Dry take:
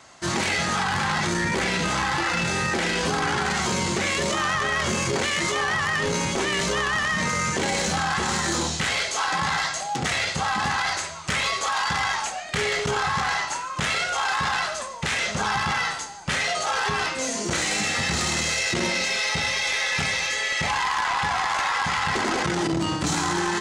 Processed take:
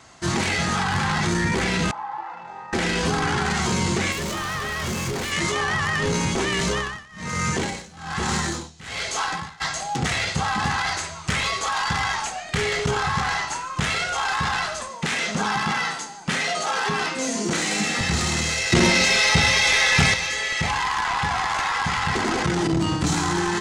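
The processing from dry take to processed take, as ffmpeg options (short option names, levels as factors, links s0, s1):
-filter_complex "[0:a]asettb=1/sr,asplit=3[s0][s1][s2];[s0]atrim=end=1.914[s3];[s1]atrim=start=1.91:end=2.73,asetpts=PTS-STARTPTS,afade=t=in:d=0.004:c=qsin,afade=t=out:st=0.816:d=0.004:c=qsin,bandpass=f=870:t=q:w=5.5[s4];[s2]atrim=start=2.726[s5];[s3][s4]acrossfade=d=0.004:c1=hsin:c2=qsin[s6];[s6][s5]acrossfade=d=0.004:c1=qsin:c2=hsin,asettb=1/sr,asplit=3[s7][s8][s9];[s7]atrim=end=4.124[s10];[s8]atrim=start=4.12:end=5.32,asetpts=PTS-STARTPTS,afade=t=in:d=0.004:c=qsin,afade=t=out:st=1.196:d=0.004:c=qsin,asoftclip=type=hard:threshold=0.0473[s11];[s9]atrim=start=5.316[s12];[s10][s11]acrossfade=d=0.004:c1=hsin:c2=qsin[s13];[s13][s12]acrossfade=d=0.004:c1=qsin:c2=hsin,asplit=3[s14][s15][s16];[s14]afade=t=out:st=6.61:d=0.02[s17];[s15]tremolo=f=1.2:d=0.94,afade=t=in:st=6.61:d=0.02,afade=t=out:st=9.6:d=0.02[s18];[s16]afade=t=in:st=9.6:d=0.02[s19];[s17][s18][s19]amix=inputs=3:normalize=0,asettb=1/sr,asplit=3[s20][s21][s22];[s20]atrim=end=14.894[s23];[s21]atrim=start=14.89:end=18.01,asetpts=PTS-STARTPTS,afade=t=in:d=0.004:c=qsin,afade=t=out:st=3.116:d=0.004:c=qsin,lowshelf=f=130:t=q:w=1.5:g=-13.5[s24];[s22]atrim=start=18.006[s25];[s23][s24]acrossfade=d=0.004:c1=hsin:c2=qsin[s26];[s26][s25]acrossfade=d=0.004:c1=qsin:c2=hsin,asettb=1/sr,asplit=3[s27][s28][s29];[s27]atrim=end=18.724[s30];[s28]atrim=start=18.72:end=20.14,asetpts=PTS-STARTPTS,afade=t=in:d=0.004:c=qsin,afade=t=out:st=1.416:d=0.004:c=qsin,acontrast=65[s31];[s29]atrim=start=20.136[s32];[s30][s31]acrossfade=d=0.004:c1=hsin:c2=qsin[s33];[s33][s32]acrossfade=d=0.004:c1=qsin:c2=hsin,lowshelf=f=210:g=7.5,bandreject=f=570:w=12"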